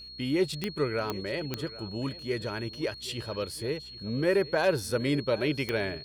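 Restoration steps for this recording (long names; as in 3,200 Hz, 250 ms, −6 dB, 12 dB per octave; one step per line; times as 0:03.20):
click removal
hum removal 62.7 Hz, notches 7
notch filter 4,300 Hz, Q 30
echo removal 773 ms −18 dB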